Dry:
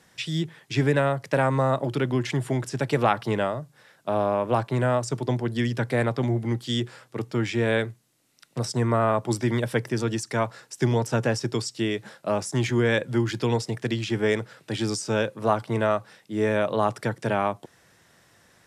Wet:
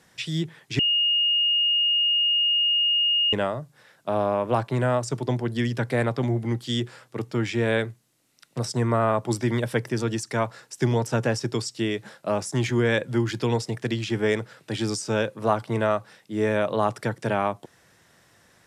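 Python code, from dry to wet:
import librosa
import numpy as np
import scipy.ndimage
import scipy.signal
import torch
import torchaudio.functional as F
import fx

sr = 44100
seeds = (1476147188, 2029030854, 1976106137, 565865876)

y = fx.edit(x, sr, fx.bleep(start_s=0.79, length_s=2.54, hz=2850.0, db=-18.5), tone=tone)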